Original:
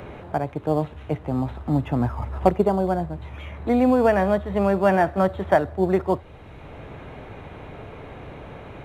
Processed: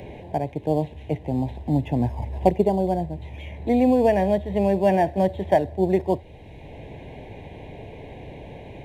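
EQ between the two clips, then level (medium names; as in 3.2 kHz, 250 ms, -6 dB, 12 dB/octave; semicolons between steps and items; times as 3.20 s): Butterworth band-stop 1.3 kHz, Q 1.3; 0.0 dB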